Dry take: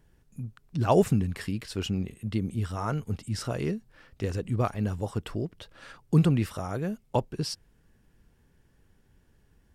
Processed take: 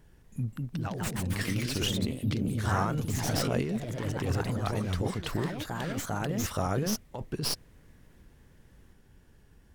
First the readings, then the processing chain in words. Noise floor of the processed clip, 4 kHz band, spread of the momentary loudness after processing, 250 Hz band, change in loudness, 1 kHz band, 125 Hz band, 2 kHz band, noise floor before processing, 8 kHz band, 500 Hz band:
-59 dBFS, +5.0 dB, 6 LU, -2.5 dB, -2.0 dB, -1.0 dB, -2.5 dB, +5.0 dB, -64 dBFS, +7.0 dB, -4.0 dB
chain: tracing distortion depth 0.056 ms; compressor with a negative ratio -32 dBFS, ratio -1; ever faster or slower copies 241 ms, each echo +2 st, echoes 3

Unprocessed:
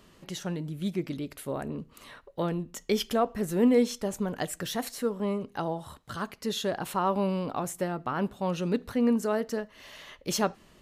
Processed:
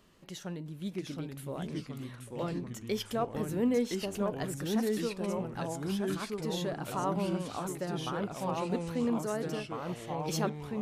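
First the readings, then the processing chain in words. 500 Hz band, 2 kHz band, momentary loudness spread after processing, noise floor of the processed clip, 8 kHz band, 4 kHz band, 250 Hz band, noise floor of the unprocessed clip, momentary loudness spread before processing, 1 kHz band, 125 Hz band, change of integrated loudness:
-4.5 dB, -4.0 dB, 9 LU, -49 dBFS, -4.5 dB, -4.5 dB, -4.0 dB, -58 dBFS, 13 LU, -4.5 dB, -1.0 dB, -4.5 dB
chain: ever faster or slower copies 661 ms, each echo -2 st, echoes 3; trim -6.5 dB

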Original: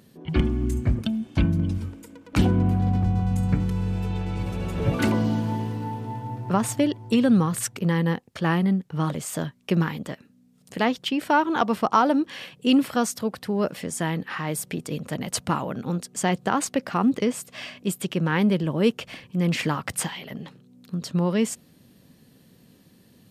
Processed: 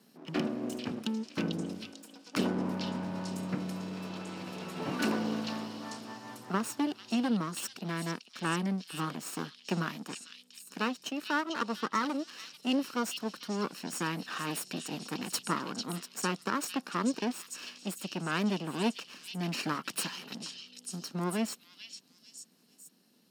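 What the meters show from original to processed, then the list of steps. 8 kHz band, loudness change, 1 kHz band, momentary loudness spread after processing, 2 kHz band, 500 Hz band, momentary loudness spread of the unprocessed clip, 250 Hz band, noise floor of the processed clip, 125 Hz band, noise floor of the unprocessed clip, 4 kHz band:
-7.0 dB, -10.0 dB, -9.0 dB, 12 LU, -6.0 dB, -10.5 dB, 11 LU, -10.0 dB, -63 dBFS, -15.5 dB, -56 dBFS, -4.0 dB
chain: comb filter that takes the minimum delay 0.73 ms; high-pass 200 Hz 24 dB/octave; peaking EQ 5.1 kHz +5.5 dB 0.34 oct; gain riding within 4 dB 2 s; repeats whose band climbs or falls 445 ms, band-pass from 4 kHz, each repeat 0.7 oct, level -1 dB; trim -8 dB

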